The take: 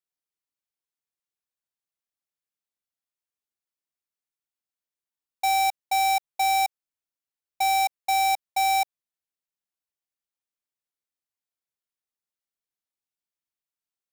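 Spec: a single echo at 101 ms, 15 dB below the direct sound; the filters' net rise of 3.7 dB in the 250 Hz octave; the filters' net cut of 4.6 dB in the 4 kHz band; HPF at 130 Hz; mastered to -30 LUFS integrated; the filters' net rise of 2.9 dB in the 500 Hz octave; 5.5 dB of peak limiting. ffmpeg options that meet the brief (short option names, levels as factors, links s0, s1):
-af "highpass=130,equalizer=f=250:t=o:g=3.5,equalizer=f=500:t=o:g=5.5,equalizer=f=4000:t=o:g=-5.5,alimiter=limit=0.0668:level=0:latency=1,aecho=1:1:101:0.178,volume=0.794"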